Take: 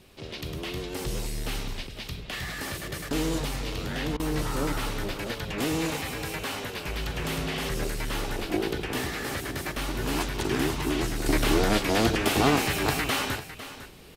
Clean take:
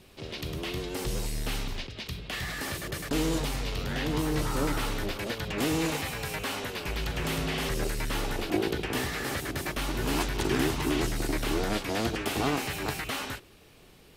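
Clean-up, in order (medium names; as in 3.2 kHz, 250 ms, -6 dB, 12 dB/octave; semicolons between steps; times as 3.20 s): interpolate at 4.17 s, 26 ms; inverse comb 502 ms -13.5 dB; trim 0 dB, from 11.26 s -6 dB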